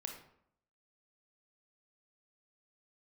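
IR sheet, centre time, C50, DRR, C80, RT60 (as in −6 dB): 25 ms, 6.0 dB, 2.5 dB, 9.0 dB, 0.70 s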